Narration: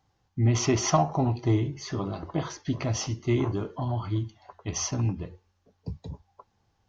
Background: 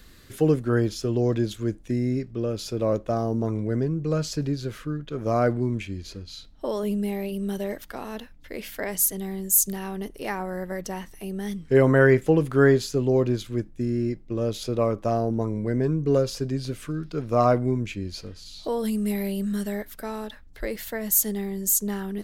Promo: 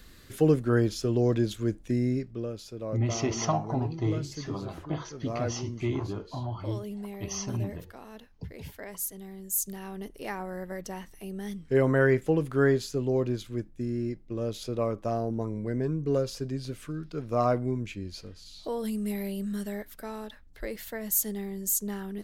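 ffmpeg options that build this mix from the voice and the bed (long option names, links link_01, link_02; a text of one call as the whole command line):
ffmpeg -i stem1.wav -i stem2.wav -filter_complex "[0:a]adelay=2550,volume=-5dB[link_01];[1:a]volume=4.5dB,afade=type=out:start_time=2.04:duration=0.6:silence=0.316228,afade=type=in:start_time=9.36:duration=0.79:silence=0.501187[link_02];[link_01][link_02]amix=inputs=2:normalize=0" out.wav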